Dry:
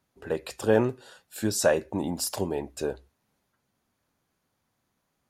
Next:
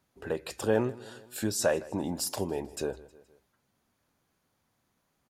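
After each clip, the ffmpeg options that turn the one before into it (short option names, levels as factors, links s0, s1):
-filter_complex "[0:a]aecho=1:1:157|314|471:0.0794|0.0381|0.0183,asplit=2[s0][s1];[s1]acompressor=threshold=0.0178:ratio=6,volume=1.26[s2];[s0][s2]amix=inputs=2:normalize=0,volume=0.501"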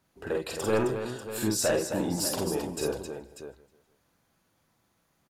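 -filter_complex "[0:a]aeval=exprs='0.211*sin(PI/2*1.78*val(0)/0.211)':c=same,asplit=2[s0][s1];[s1]aecho=0:1:46|52|264|592:0.596|0.531|0.422|0.282[s2];[s0][s2]amix=inputs=2:normalize=0,volume=0.422"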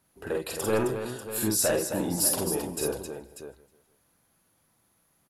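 -af "equalizer=f=11000:w=2.7:g=14.5"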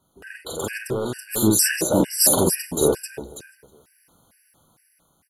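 -af "dynaudnorm=f=470:g=5:m=2.24,afftfilt=real='re*gt(sin(2*PI*2.2*pts/sr)*(1-2*mod(floor(b*sr/1024/1500),2)),0)':imag='im*gt(sin(2*PI*2.2*pts/sr)*(1-2*mod(floor(b*sr/1024/1500),2)),0)':win_size=1024:overlap=0.75,volume=1.78"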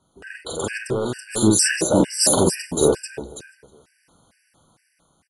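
-af "aresample=22050,aresample=44100,volume=1.26"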